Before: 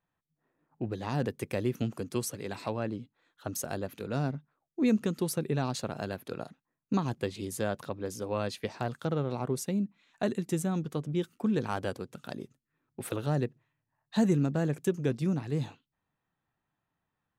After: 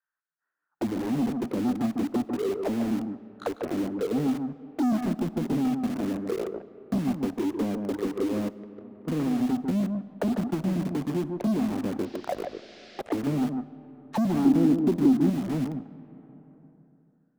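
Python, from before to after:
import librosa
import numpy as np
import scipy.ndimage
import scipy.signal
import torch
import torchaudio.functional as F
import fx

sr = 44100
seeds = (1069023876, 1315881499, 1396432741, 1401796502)

p1 = fx.auto_wah(x, sr, base_hz=250.0, top_hz=1500.0, q=6.9, full_db=-30.5, direction='down')
p2 = fx.leveller(p1, sr, passes=5)
p3 = fx.env_lowpass_down(p2, sr, base_hz=1200.0, full_db=-26.5)
p4 = fx.cheby_harmonics(p3, sr, harmonics=(5,), levels_db=(-44,), full_scale_db=-20.0)
p5 = p4 + 10.0 ** (-8.5 / 20.0) * np.pad(p4, (int(147 * sr / 1000.0), 0))[:len(p4)]
p6 = fx.gate_flip(p5, sr, shuts_db=-31.0, range_db=-30, at=(8.48, 9.07), fade=0.02)
p7 = (np.mod(10.0 ** (29.5 / 20.0) * p6 + 1.0, 2.0) - 1.0) / 10.0 ** (29.5 / 20.0)
p8 = p6 + (p7 * librosa.db_to_amplitude(-10.0))
p9 = fx.rev_freeverb(p8, sr, rt60_s=2.5, hf_ratio=0.5, predelay_ms=5, drr_db=18.0)
p10 = fx.dmg_noise_band(p9, sr, seeds[0], low_hz=1400.0, high_hz=5200.0, level_db=-57.0, at=(12.04, 13.0), fade=0.02)
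p11 = fx.peak_eq(p10, sr, hz=300.0, db=11.5, octaves=0.99, at=(14.45, 15.3))
y = fx.band_squash(p11, sr, depth_pct=40)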